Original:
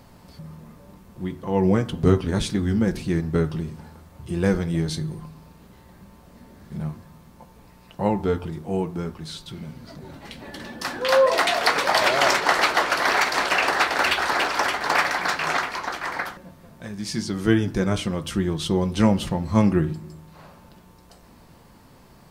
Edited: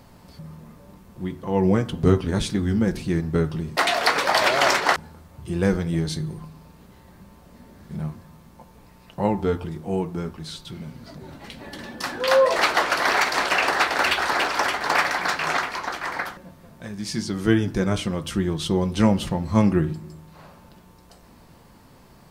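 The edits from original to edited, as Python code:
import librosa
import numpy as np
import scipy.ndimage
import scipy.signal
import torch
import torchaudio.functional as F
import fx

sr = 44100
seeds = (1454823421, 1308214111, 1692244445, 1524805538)

y = fx.edit(x, sr, fx.move(start_s=11.37, length_s=1.19, to_s=3.77), tone=tone)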